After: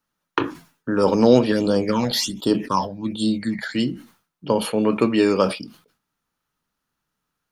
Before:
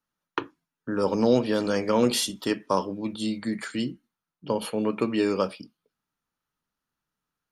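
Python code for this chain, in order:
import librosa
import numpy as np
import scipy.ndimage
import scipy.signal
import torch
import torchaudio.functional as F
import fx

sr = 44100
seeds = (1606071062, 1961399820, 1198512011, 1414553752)

y = fx.phaser_stages(x, sr, stages=8, low_hz=330.0, high_hz=2100.0, hz=1.3, feedback_pct=30, at=(1.51, 3.74), fade=0.02)
y = fx.sustainer(y, sr, db_per_s=140.0)
y = y * librosa.db_to_amplitude(6.5)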